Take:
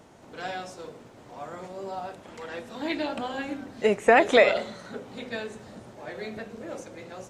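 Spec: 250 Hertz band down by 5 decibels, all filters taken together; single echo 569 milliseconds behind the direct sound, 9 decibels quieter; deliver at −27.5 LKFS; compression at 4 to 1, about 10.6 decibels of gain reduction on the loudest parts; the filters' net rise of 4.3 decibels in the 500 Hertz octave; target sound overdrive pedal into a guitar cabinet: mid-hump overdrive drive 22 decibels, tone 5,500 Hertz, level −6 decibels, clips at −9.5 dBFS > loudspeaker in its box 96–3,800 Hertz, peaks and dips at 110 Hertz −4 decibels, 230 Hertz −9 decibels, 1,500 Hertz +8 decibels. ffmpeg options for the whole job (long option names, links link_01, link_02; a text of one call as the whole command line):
ffmpeg -i in.wav -filter_complex "[0:a]equalizer=frequency=250:width_type=o:gain=-5.5,equalizer=frequency=500:width_type=o:gain=6.5,acompressor=threshold=-22dB:ratio=4,aecho=1:1:569:0.355,asplit=2[link_01][link_02];[link_02]highpass=frequency=720:poles=1,volume=22dB,asoftclip=type=tanh:threshold=-9.5dB[link_03];[link_01][link_03]amix=inputs=2:normalize=0,lowpass=frequency=5500:poles=1,volume=-6dB,highpass=96,equalizer=frequency=110:width_type=q:width=4:gain=-4,equalizer=frequency=230:width_type=q:width=4:gain=-9,equalizer=frequency=1500:width_type=q:width=4:gain=8,lowpass=frequency=3800:width=0.5412,lowpass=frequency=3800:width=1.3066,volume=-6dB" out.wav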